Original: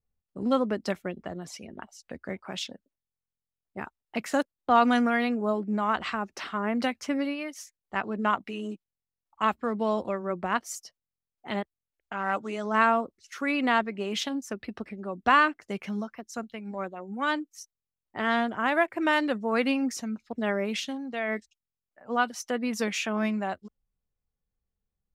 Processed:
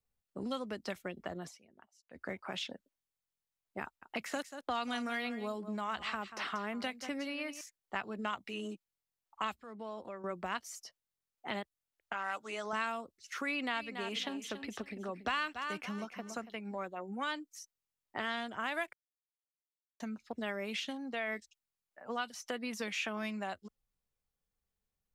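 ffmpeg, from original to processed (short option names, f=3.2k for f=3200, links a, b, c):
-filter_complex "[0:a]asettb=1/sr,asplit=3[a][b][c];[a]atrim=end=3.834[d];[b]atrim=start=3.83:end=7.61,asetpts=PTS-STARTPTS,afade=t=in:d=0.004:c=qsin,afade=t=out:st=3.776:d=0.004:c=qsin,aecho=1:1:185:0.168,atrim=end_sample=166698[e];[c]atrim=start=7.606[f];[d][e]acrossfade=d=0.004:c1=hsin:c2=qsin[g];[g][f]acrossfade=d=0.004:c1=qsin:c2=hsin,asettb=1/sr,asplit=3[h][i][j];[h]atrim=end=9.554[k];[i]atrim=start=9.55:end=10.24,asetpts=PTS-STARTPTS,afade=t=in:d=0.004:c=qsin,afade=t=out:st=0.686:d=0.004:c=qsin,acompressor=threshold=-50dB:ratio=2:attack=3.2:release=140:knee=1:detection=peak[l];[j]atrim=start=10.236[m];[k][l]acrossfade=d=0.004:c1=hsin:c2=qsin[n];[n][m]acrossfade=d=0.004:c1=qsin:c2=hsin,asettb=1/sr,asplit=3[o][p][q];[o]atrim=end=12.134[r];[p]atrim=start=12.13:end=12.73,asetpts=PTS-STARTPTS,afade=t=in:d=0.004:c=qsin,afade=t=out:st=0.596:d=0.004:c=qsin,lowshelf=f=370:g=-12[s];[q]atrim=start=12.726[t];[r][s]acrossfade=d=0.004:c1=hsin:c2=qsin[u];[u][t]acrossfade=d=0.004:c1=qsin:c2=hsin,asettb=1/sr,asplit=3[v][w][x];[v]atrim=end=13.474[y];[w]atrim=start=13.47:end=16.56,asetpts=PTS-STARTPTS,afade=t=in:d=0.004:c=qsin,afade=t=out:st=3.086:d=0.004:c=qsin,aecho=1:1:282|564|846:0.251|0.0527|0.0111,atrim=end_sample=136269[z];[x]atrim=start=16.556[aa];[y][z]acrossfade=d=0.004:c1=hsin:c2=qsin[ab];[ab][aa]acrossfade=d=0.004:c1=qsin:c2=hsin,asplit=5[ac][ad][ae][af][ag];[ac]atrim=end=1.74,asetpts=PTS-STARTPTS,afade=t=out:st=1.47:d=0.27:c=exp:silence=0.105925[ah];[ad]atrim=start=1.74:end=1.91,asetpts=PTS-STARTPTS,volume=-19.5dB[ai];[ae]atrim=start=1.91:end=18.93,asetpts=PTS-STARTPTS,afade=t=in:d=0.27:c=exp:silence=0.105925,afade=t=out:st=17.016:d=0.004:c=hsin[aj];[af]atrim=start=18.93:end=20,asetpts=PTS-STARTPTS,volume=0[ak];[ag]atrim=start=20,asetpts=PTS-STARTPTS,afade=t=in:d=0.004:c=hsin[al];[ah][ai][aj][ak][al]concat=n=5:v=0:a=1,acrossover=split=120|3000[am][an][ao];[an]acompressor=threshold=-36dB:ratio=5[ap];[am][ap][ao]amix=inputs=3:normalize=0,lowshelf=f=330:g=-7.5,acrossover=split=3000[aq][ar];[ar]acompressor=threshold=-47dB:ratio=4:attack=1:release=60[as];[aq][as]amix=inputs=2:normalize=0,volume=1.5dB"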